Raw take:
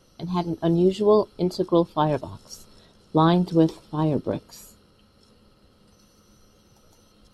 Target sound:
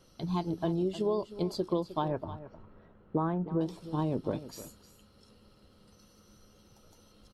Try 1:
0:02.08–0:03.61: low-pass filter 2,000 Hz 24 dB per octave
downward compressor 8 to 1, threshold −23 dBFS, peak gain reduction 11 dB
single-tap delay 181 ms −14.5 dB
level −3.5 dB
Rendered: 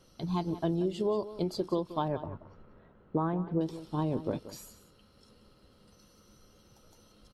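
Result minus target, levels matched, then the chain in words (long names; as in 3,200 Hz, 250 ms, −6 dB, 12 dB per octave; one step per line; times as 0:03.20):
echo 128 ms early
0:02.08–0:03.61: low-pass filter 2,000 Hz 24 dB per octave
downward compressor 8 to 1, threshold −23 dBFS, peak gain reduction 11 dB
single-tap delay 309 ms −14.5 dB
level −3.5 dB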